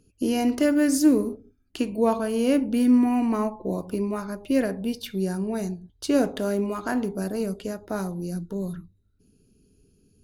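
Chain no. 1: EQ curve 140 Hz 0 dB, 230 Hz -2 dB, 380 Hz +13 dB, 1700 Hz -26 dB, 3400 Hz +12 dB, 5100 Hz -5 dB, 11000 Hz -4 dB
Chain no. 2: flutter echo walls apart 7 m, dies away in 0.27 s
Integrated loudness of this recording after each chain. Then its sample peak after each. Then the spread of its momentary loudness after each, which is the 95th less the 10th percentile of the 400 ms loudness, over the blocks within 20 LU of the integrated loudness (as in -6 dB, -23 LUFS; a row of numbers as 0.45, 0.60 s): -21.0, -24.0 LUFS; -2.5, -9.0 dBFS; 11, 12 LU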